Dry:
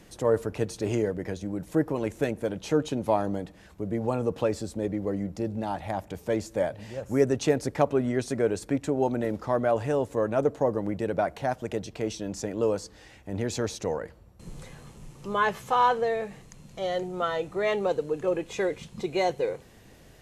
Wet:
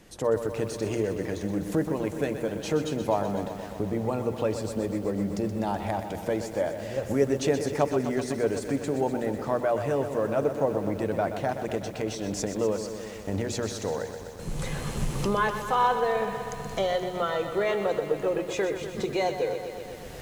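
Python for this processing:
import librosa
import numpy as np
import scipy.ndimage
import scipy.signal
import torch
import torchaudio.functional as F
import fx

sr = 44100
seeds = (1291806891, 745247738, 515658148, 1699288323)

y = fx.recorder_agc(x, sr, target_db=-17.0, rise_db_per_s=17.0, max_gain_db=30)
y = fx.hum_notches(y, sr, base_hz=60, count=6)
y = fx.echo_crushed(y, sr, ms=125, feedback_pct=80, bits=8, wet_db=-9.5)
y = y * 10.0 ** (-1.5 / 20.0)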